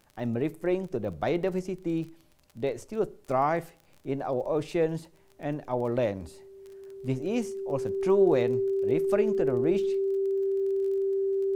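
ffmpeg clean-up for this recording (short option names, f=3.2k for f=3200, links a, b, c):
-af "adeclick=t=4,bandreject=f=390:w=30"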